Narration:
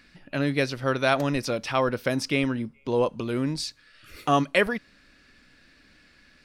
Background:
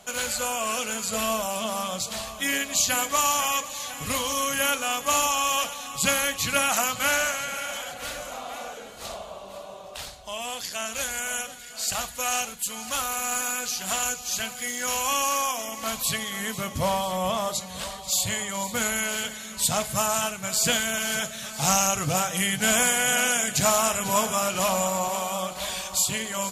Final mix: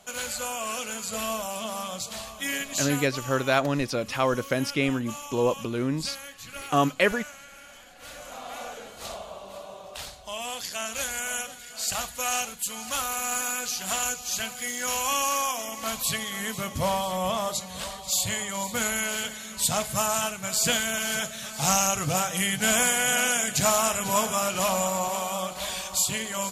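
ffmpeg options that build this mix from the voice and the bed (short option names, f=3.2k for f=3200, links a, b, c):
-filter_complex "[0:a]adelay=2450,volume=-0.5dB[a];[1:a]volume=11.5dB,afade=t=out:st=2.67:d=0.52:silence=0.237137,afade=t=in:st=7.9:d=0.73:silence=0.16788[b];[a][b]amix=inputs=2:normalize=0"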